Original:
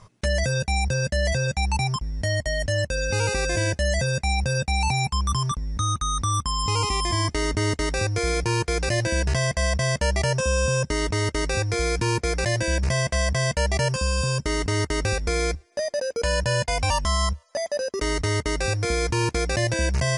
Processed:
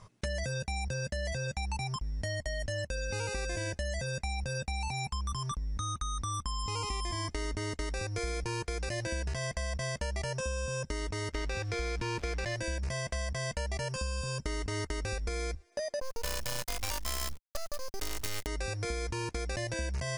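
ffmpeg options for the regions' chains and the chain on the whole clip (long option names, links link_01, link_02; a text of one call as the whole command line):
ffmpeg -i in.wav -filter_complex "[0:a]asettb=1/sr,asplit=3[link_01][link_02][link_03];[link_01]atrim=end=11.334[link_04];[link_02]atrim=start=11.33:end=12.56,asetpts=PTS-STARTPTS,afade=type=in:duration=0.004:curve=qsin,afade=type=out:start_time=1.226:duration=0.004:curve=qsin,aeval=exprs='val(0)+0.5*0.0224*sgn(val(0))':channel_layout=same,lowpass=3200,aemphasis=mode=production:type=75kf[link_05];[link_03]atrim=start=12.556[link_06];[link_04][link_05]acrossfade=duration=0.004:curve1=hsin:curve2=qsin[link_07];[link_07][link_06]acrossfade=duration=0.004:curve1=qsin:curve2=hsin,asettb=1/sr,asplit=3[link_08][link_09][link_10];[link_08]atrim=end=16.004[link_11];[link_09]atrim=start=16:end=18.47,asetpts=PTS-STARTPTS,afade=type=in:duration=0.004:curve=qsin,afade=type=out:start_time=2.466:duration=0.004:curve=qsin,acrusher=bits=4:dc=4:mix=0:aa=0.000001,adynamicequalizer=threshold=0.0112:dfrequency=2800:dqfactor=0.7:tfrequency=2800:tqfactor=0.7:attack=5:release=100:ratio=0.375:range=2.5:mode=boostabove:tftype=highshelf[link_12];[link_10]atrim=start=18.466[link_13];[link_11][link_12]acrossfade=duration=0.004:curve1=hsin:curve2=qsin[link_14];[link_14][link_13]acrossfade=duration=0.004:curve1=qsin:curve2=hsin,asubboost=boost=3:cutoff=51,acompressor=threshold=-27dB:ratio=6,volume=-4.5dB" out.wav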